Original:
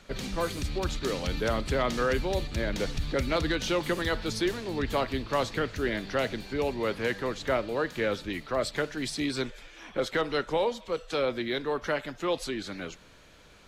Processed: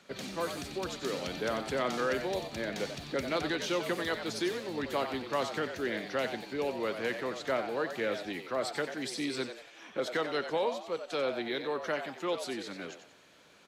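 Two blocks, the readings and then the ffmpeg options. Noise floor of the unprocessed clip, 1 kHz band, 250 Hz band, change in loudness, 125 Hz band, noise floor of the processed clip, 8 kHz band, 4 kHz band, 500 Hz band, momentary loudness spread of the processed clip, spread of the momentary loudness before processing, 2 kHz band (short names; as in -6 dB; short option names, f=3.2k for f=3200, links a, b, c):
-54 dBFS, -3.0 dB, -4.5 dB, -4.0 dB, -11.0 dB, -58 dBFS, -3.5 dB, -3.5 dB, -3.5 dB, 6 LU, 6 LU, -3.5 dB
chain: -filter_complex "[0:a]highpass=170,asplit=2[a][b];[b]asplit=4[c][d][e][f];[c]adelay=91,afreqshift=100,volume=-9dB[g];[d]adelay=182,afreqshift=200,volume=-18.1dB[h];[e]adelay=273,afreqshift=300,volume=-27.2dB[i];[f]adelay=364,afreqshift=400,volume=-36.4dB[j];[g][h][i][j]amix=inputs=4:normalize=0[k];[a][k]amix=inputs=2:normalize=0,volume=-4dB"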